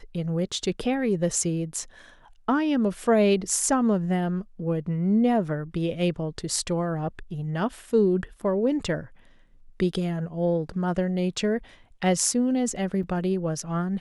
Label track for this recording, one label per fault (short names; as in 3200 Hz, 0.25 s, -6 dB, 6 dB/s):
13.030000	13.040000	gap 5.6 ms